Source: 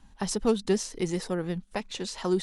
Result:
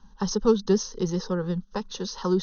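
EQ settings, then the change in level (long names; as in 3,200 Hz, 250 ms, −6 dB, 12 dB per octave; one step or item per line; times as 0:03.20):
linear-phase brick-wall low-pass 6,600 Hz
phaser with its sweep stopped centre 450 Hz, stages 8
+5.0 dB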